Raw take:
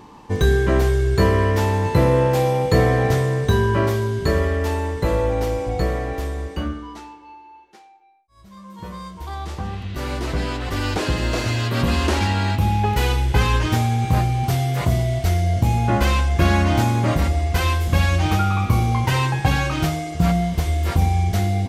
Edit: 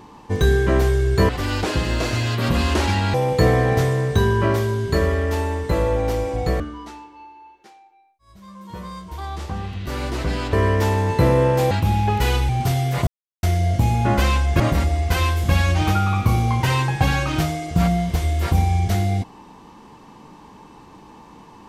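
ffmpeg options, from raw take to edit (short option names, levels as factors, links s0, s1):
-filter_complex "[0:a]asplit=10[s0][s1][s2][s3][s4][s5][s6][s7][s8][s9];[s0]atrim=end=1.292[s10];[s1]atrim=start=10.618:end=12.472[s11];[s2]atrim=start=2.468:end=5.932[s12];[s3]atrim=start=6.688:end=10.622[s13];[s4]atrim=start=1.288:end=2.472[s14];[s5]atrim=start=12.468:end=13.252[s15];[s6]atrim=start=14.318:end=14.9,asetpts=PTS-STARTPTS,afade=t=out:st=0.578:d=0.004:c=hsin[s16];[s7]atrim=start=14.9:end=15.26,asetpts=PTS-STARTPTS,volume=0[s17];[s8]atrim=start=15.26:end=16.432,asetpts=PTS-STARTPTS,afade=t=in:d=0.004:c=hsin[s18];[s9]atrim=start=17.038[s19];[s10][s11]acrossfade=d=0.004:c1=hsin:c2=hsin[s20];[s20][s12]acrossfade=d=0.004:c1=hsin:c2=hsin[s21];[s21][s13]acrossfade=d=0.004:c1=hsin:c2=hsin[s22];[s22][s14]acrossfade=d=0.004:c1=hsin:c2=hsin[s23];[s23][s15]acrossfade=d=0.004:c1=hsin:c2=hsin[s24];[s16][s17][s18]concat=n=3:v=0:a=1[s25];[s24][s25]acrossfade=d=0.004:c1=hsin:c2=hsin[s26];[s26][s19]acrossfade=d=0.004:c1=hsin:c2=hsin"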